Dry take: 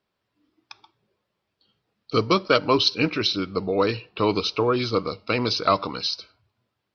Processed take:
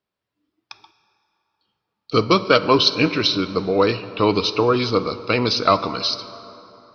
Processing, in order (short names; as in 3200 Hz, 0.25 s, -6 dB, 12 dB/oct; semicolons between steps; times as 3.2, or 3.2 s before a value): gate -56 dBFS, range -10 dB; plate-style reverb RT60 3.4 s, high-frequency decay 0.55×, DRR 12.5 dB; gain +4 dB